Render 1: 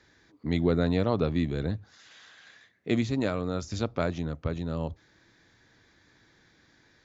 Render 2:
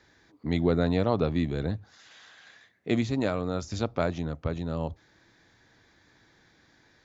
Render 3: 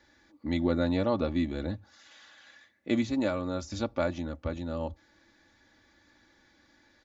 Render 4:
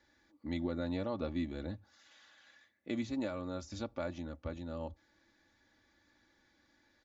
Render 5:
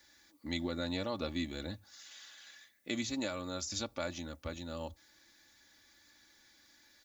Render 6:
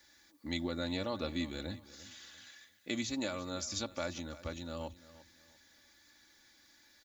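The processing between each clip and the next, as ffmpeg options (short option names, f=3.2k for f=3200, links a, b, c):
-af "equalizer=f=770:t=o:w=0.77:g=3.5"
-af "aecho=1:1:3.5:0.7,volume=-3.5dB"
-af "alimiter=limit=-18dB:level=0:latency=1:release=123,volume=-7.5dB"
-af "crystalizer=i=7:c=0,volume=-1.5dB"
-af "aecho=1:1:344|688|1032:0.133|0.04|0.012"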